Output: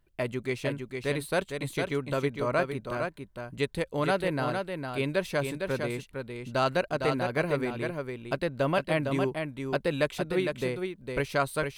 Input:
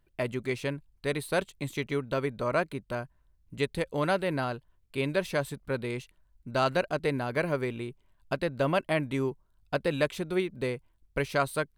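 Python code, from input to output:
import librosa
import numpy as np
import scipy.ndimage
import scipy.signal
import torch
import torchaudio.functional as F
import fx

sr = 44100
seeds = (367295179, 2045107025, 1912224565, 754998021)

y = x + 10.0 ** (-5.5 / 20.0) * np.pad(x, (int(457 * sr / 1000.0), 0))[:len(x)]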